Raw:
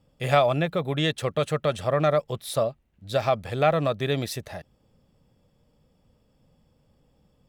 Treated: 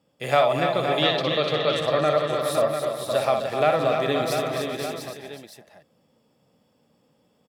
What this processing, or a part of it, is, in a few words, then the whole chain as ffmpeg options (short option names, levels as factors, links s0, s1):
ducked delay: -filter_complex "[0:a]highpass=210,asettb=1/sr,asplit=3[s0][s1][s2];[s0]atrim=end=0.674[s3];[s1]atrim=start=0.67:end=1.74,asetpts=PTS-STARTPTS,afade=t=in:d=0.004:c=qsin,afade=t=out:st=1.066:d=0.004:c=qsin,highshelf=f=6100:t=q:w=3:g=-11.5[s4];[s2]atrim=start=1.736[s5];[s3][s4]acrossfade=d=0.004:c1=hsin:c2=qsin[s6];[s6][s5]acrossfade=d=0.004:c1=qsin:c2=hsin,aecho=1:1:61|256|295|420|546|696:0.501|0.316|0.447|0.158|0.237|0.422,asplit=3[s7][s8][s9];[s8]adelay=514,volume=0.531[s10];[s9]apad=whole_len=383229[s11];[s10][s11]sidechaincompress=threshold=0.0631:ratio=8:attack=16:release=286[s12];[s7][s12]amix=inputs=2:normalize=0"